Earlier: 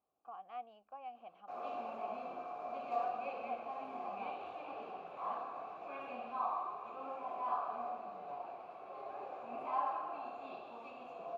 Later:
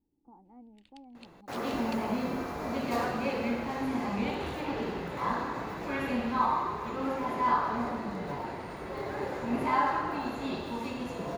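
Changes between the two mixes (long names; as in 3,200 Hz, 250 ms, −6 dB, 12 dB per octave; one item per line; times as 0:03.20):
speech: add formant resonators in series u
first sound: unmuted
master: remove formant filter a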